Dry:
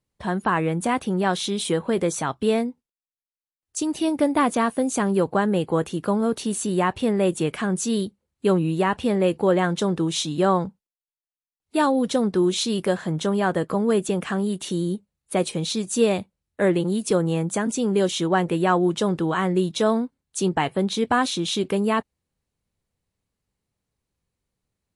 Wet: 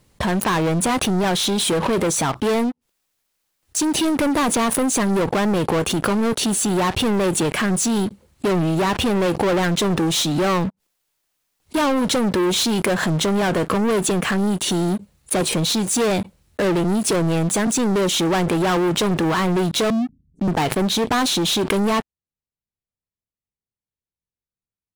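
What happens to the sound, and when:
0:19.90–0:20.48: inverse Chebyshev low-pass filter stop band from 1,100 Hz, stop band 70 dB
whole clip: leveller curve on the samples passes 5; background raised ahead of every attack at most 57 dB per second; level −7.5 dB

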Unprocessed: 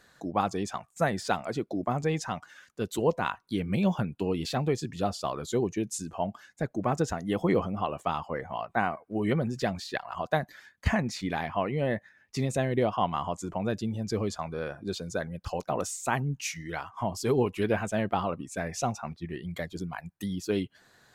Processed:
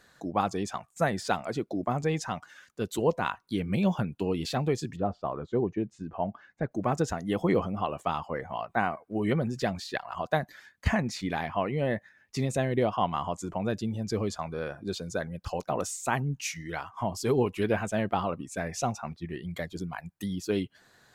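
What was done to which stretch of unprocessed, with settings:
0:04.95–0:06.70: low-pass filter 1,100 Hz → 2,300 Hz

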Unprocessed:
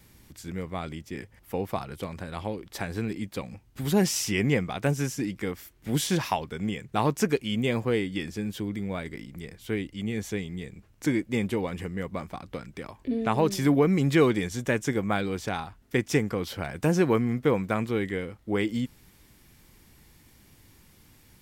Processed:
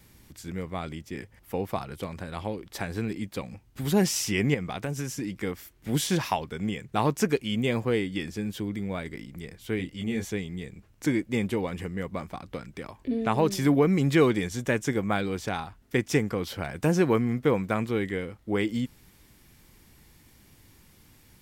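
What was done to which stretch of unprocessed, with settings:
0:04.54–0:05.40: downward compressor, threshold −27 dBFS
0:09.77–0:10.25: double-tracking delay 22 ms −5 dB

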